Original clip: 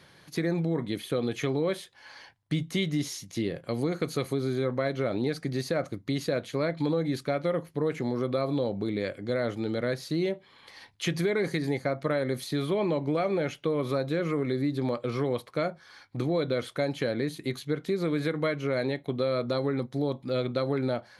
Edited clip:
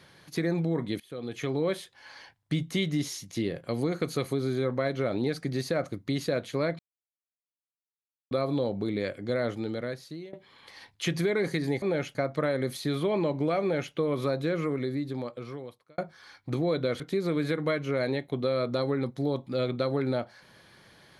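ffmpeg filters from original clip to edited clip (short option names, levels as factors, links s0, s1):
-filter_complex "[0:a]asplit=9[s0][s1][s2][s3][s4][s5][s6][s7][s8];[s0]atrim=end=1,asetpts=PTS-STARTPTS,afade=t=out:st=0.996:d=0.004:c=hsin:silence=0.0841395[s9];[s1]atrim=start=1:end=6.79,asetpts=PTS-STARTPTS,afade=t=in:d=0.64:silence=0.0841395,afade=t=out:st=5.786:d=0.004:c=hsin[s10];[s2]atrim=start=6.79:end=8.31,asetpts=PTS-STARTPTS,volume=0[s11];[s3]atrim=start=8.31:end=10.33,asetpts=PTS-STARTPTS,afade=t=in:d=0.004:c=hsin,afade=t=out:st=1.15:d=0.87:silence=0.0841395[s12];[s4]atrim=start=10.33:end=11.822,asetpts=PTS-STARTPTS,afade=t=in:d=0.004:c=hsin:silence=0.0841395[s13];[s5]atrim=start=13.278:end=13.612[s14];[s6]atrim=start=11.818:end=15.65,asetpts=PTS-STARTPTS,afade=t=out:st=2.352:d=1.48[s15];[s7]atrim=start=15.65:end=16.672,asetpts=PTS-STARTPTS,afade=t=in:d=0.004:c=hsin[s16];[s8]atrim=start=17.758[s17];[s9][s10][s11][s12][s13]concat=n=5:v=0:a=1[s18];[s18][s14]acrossfade=d=0.004:c1=hsin:c2=hsin[s19];[s15][s16]concat=n=2:v=0:a=1[s20];[s19][s20]acrossfade=d=0.004:c1=hsin:c2=hsin[s21];[s21][s17]acrossfade=d=0.004:c1=hsin:c2=hsin"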